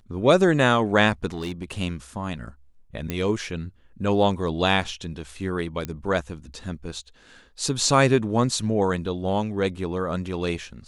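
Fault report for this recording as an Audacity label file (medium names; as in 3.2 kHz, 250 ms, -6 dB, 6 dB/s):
1.300000	1.800000	clipped -25 dBFS
3.100000	3.100000	pop -13 dBFS
5.850000	5.850000	pop -15 dBFS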